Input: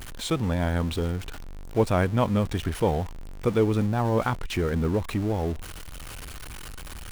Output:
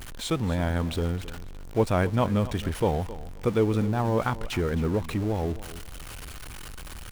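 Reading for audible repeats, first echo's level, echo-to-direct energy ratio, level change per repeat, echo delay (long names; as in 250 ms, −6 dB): 2, −16.0 dB, −16.0 dB, −14.0 dB, 266 ms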